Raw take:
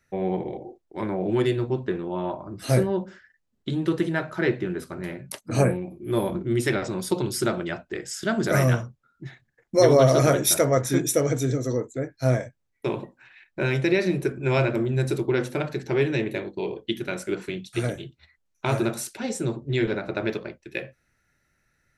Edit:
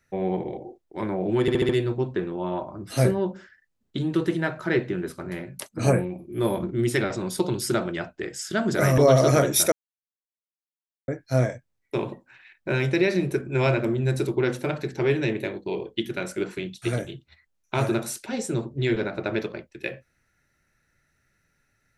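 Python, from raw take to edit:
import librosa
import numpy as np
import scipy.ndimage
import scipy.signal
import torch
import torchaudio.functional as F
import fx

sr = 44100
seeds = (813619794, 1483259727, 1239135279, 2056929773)

y = fx.edit(x, sr, fx.stutter(start_s=1.41, slice_s=0.07, count=5),
    fx.cut(start_s=8.7, length_s=1.19),
    fx.silence(start_s=10.63, length_s=1.36), tone=tone)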